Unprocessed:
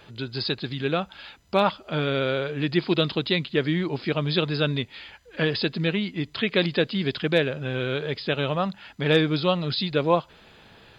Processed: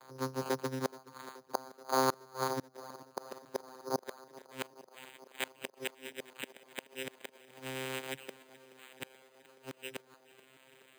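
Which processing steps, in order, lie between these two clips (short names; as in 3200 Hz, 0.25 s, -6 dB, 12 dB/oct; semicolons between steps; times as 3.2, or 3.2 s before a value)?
minimum comb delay 2.9 ms; low shelf 340 Hz +6.5 dB; vocoder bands 8, saw 131 Hz; added harmonics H 3 -31 dB, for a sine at -6 dBFS; flipped gate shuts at -17 dBFS, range -32 dB; band-pass sweep 1100 Hz -> 3100 Hz, 3.97–4.81; tape echo 0.427 s, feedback 88%, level -18.5 dB, low-pass 2900 Hz; careless resampling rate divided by 8×, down filtered, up hold; gain +10.5 dB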